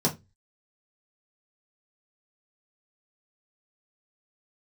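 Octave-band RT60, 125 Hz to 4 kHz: 0.40, 0.30, 0.25, 0.20, 0.20, 0.20 seconds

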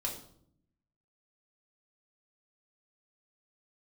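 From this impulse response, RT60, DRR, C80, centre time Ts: 0.65 s, −2.0 dB, 10.5 dB, 24 ms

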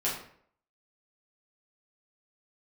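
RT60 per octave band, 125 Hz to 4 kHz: 0.60, 0.60, 0.65, 0.55, 0.55, 0.40 seconds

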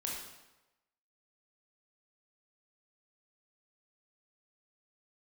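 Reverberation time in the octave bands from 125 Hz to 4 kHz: 1.0, 0.95, 1.0, 1.0, 0.95, 0.85 seconds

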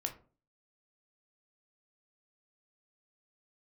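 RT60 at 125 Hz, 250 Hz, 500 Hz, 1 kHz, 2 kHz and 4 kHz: 0.50, 0.50, 0.45, 0.35, 0.25, 0.20 seconds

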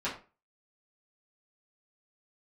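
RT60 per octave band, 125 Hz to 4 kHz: 0.35, 0.35, 0.35, 0.35, 0.30, 0.25 seconds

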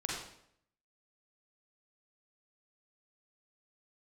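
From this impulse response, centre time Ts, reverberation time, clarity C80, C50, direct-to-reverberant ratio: 60 ms, 0.70 s, 4.0 dB, −0.5 dB, −3.5 dB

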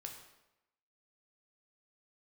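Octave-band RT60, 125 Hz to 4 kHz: 0.85, 0.90, 0.95, 0.90, 0.85, 0.75 seconds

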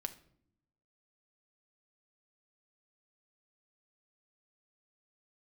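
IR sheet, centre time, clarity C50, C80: 6 ms, 14.5 dB, 19.0 dB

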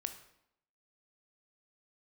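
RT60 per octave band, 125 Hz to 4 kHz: 0.70, 0.85, 0.80, 0.75, 0.70, 0.60 seconds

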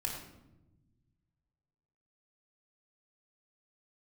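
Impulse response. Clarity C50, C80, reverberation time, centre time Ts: 3.5 dB, 6.0 dB, non-exponential decay, 39 ms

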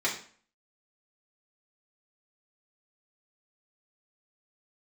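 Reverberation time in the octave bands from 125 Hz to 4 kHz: 0.45, 0.50, 0.45, 0.45, 0.45, 0.40 seconds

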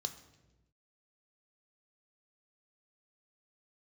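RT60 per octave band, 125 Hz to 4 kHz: 1.4, 1.3, 1.2, 0.90, 0.90, 0.85 seconds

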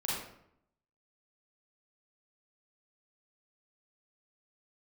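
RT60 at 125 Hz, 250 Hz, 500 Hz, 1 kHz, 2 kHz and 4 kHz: 0.85, 0.85, 0.75, 0.70, 0.60, 0.50 seconds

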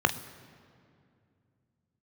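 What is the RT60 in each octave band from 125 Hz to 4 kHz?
3.6, 3.3, 2.6, 2.2, 2.0, 1.5 seconds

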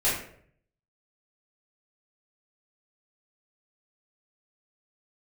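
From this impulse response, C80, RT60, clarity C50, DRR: 7.0 dB, 0.60 s, 3.0 dB, −10.5 dB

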